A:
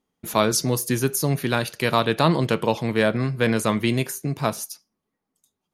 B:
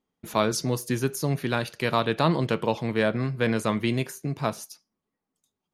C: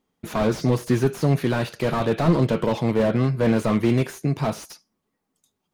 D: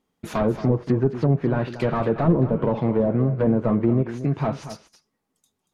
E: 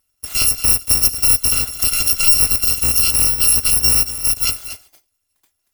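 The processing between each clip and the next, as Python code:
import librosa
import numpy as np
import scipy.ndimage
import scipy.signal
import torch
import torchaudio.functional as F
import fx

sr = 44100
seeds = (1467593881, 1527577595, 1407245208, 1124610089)

y1 = fx.high_shelf(x, sr, hz=8300.0, db=-10.0)
y1 = F.gain(torch.from_numpy(y1), -3.5).numpy()
y2 = fx.slew_limit(y1, sr, full_power_hz=34.0)
y2 = F.gain(torch.from_numpy(y2), 7.0).numpy()
y3 = fx.env_lowpass_down(y2, sr, base_hz=720.0, full_db=-15.5)
y3 = y3 + 10.0 ** (-12.5 / 20.0) * np.pad(y3, (int(232 * sr / 1000.0), 0))[:len(y3)]
y4 = fx.bit_reversed(y3, sr, seeds[0], block=256)
y4 = F.gain(torch.from_numpy(y4), 5.5).numpy()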